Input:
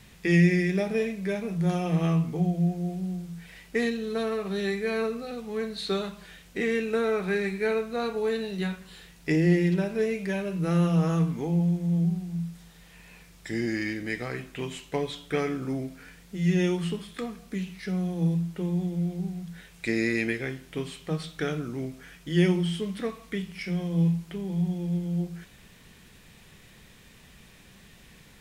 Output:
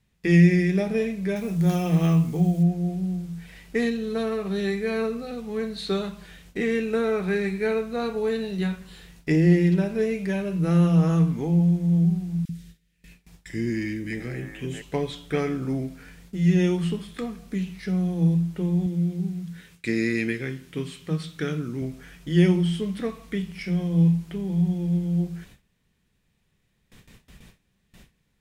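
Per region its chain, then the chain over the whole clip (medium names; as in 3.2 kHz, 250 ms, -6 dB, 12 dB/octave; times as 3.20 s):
1.36–2.63 s: treble shelf 4.4 kHz +9 dB + careless resampling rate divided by 2×, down none, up hold
12.45–14.82 s: dynamic bell 4.2 kHz, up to -7 dB, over -57 dBFS, Q 2.3 + three bands offset in time highs, lows, mids 40/670 ms, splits 500/1500 Hz
18.86–21.82 s: high-pass 95 Hz + peaking EQ 700 Hz -8 dB 0.72 oct
whole clip: gate with hold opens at -41 dBFS; bass shelf 270 Hz +6.5 dB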